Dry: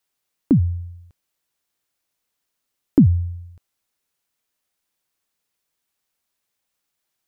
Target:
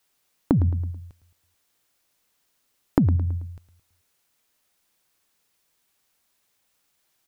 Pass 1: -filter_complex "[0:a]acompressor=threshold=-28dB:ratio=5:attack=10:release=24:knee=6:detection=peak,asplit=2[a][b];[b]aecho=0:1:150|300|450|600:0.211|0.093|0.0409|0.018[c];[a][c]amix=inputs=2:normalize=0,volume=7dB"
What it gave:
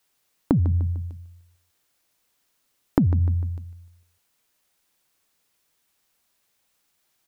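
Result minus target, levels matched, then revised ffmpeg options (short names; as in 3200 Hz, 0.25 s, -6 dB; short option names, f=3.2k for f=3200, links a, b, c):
echo 41 ms late
-filter_complex "[0:a]acompressor=threshold=-28dB:ratio=5:attack=10:release=24:knee=6:detection=peak,asplit=2[a][b];[b]aecho=0:1:109|218|327|436:0.211|0.093|0.0409|0.018[c];[a][c]amix=inputs=2:normalize=0,volume=7dB"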